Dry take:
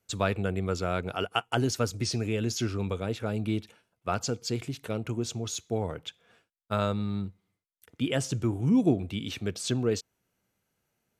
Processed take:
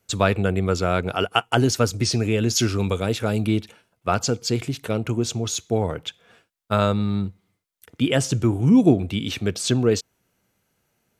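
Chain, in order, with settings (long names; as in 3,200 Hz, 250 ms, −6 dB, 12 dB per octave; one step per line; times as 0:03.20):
0:02.55–0:03.47: high-shelf EQ 3,700 Hz +7.5 dB
level +8 dB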